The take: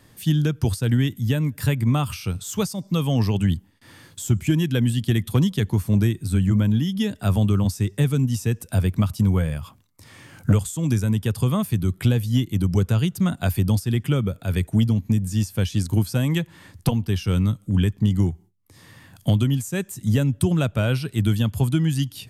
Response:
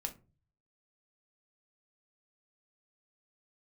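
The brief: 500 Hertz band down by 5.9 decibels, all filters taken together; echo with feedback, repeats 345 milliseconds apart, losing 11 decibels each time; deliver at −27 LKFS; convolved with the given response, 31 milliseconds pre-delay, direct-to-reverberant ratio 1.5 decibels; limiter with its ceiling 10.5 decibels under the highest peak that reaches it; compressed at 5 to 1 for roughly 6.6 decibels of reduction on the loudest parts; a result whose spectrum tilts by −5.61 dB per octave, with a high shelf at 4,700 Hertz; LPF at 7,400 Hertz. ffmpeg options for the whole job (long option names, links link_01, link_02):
-filter_complex "[0:a]lowpass=7400,equalizer=frequency=500:width_type=o:gain=-8,highshelf=frequency=4700:gain=3.5,acompressor=threshold=-22dB:ratio=5,alimiter=limit=-24dB:level=0:latency=1,aecho=1:1:345|690|1035:0.282|0.0789|0.0221,asplit=2[link_01][link_02];[1:a]atrim=start_sample=2205,adelay=31[link_03];[link_02][link_03]afir=irnorm=-1:irlink=0,volume=-1dB[link_04];[link_01][link_04]amix=inputs=2:normalize=0,volume=2.5dB"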